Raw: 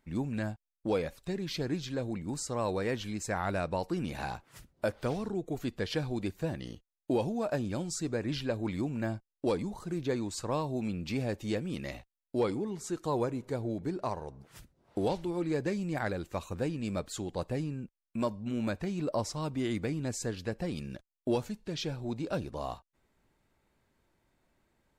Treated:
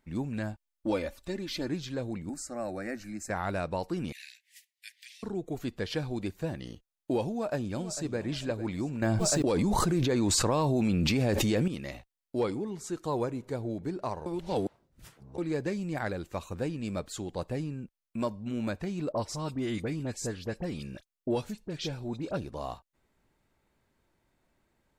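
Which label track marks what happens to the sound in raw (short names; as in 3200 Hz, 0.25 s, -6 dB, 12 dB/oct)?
0.530000	1.690000	comb 3.4 ms
2.290000	3.300000	fixed phaser centre 660 Hz, stages 8
4.120000	5.230000	steep high-pass 1800 Hz 96 dB/oct
7.310000	8.200000	echo throw 0.45 s, feedback 35%, level -12.5 dB
9.020000	11.680000	fast leveller amount 100%
14.260000	15.380000	reverse
19.120000	22.370000	dispersion highs, late by 41 ms, half as late at 2000 Hz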